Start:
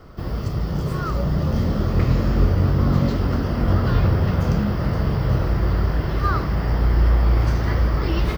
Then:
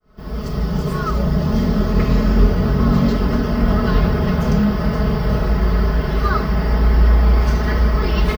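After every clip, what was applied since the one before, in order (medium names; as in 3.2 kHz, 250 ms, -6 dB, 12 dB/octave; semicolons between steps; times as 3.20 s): fade-in on the opening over 0.52 s; comb 4.7 ms, depth 89%; trim +2 dB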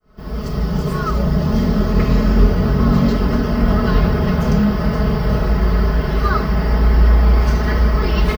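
band-stop 3.5 kHz, Q 29; trim +1 dB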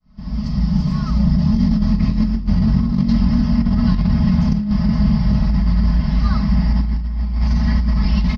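FFT filter 150 Hz 0 dB, 220 Hz +5 dB, 410 Hz -26 dB, 600 Hz -13 dB, 970 Hz -6 dB, 1.4 kHz -16 dB, 2 kHz -6 dB, 3 kHz -8 dB, 5.1 kHz 0 dB, 9.7 kHz -27 dB; compressor with a negative ratio -14 dBFS, ratio -0.5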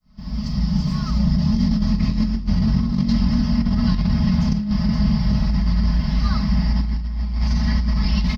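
treble shelf 3.1 kHz +9 dB; trim -3 dB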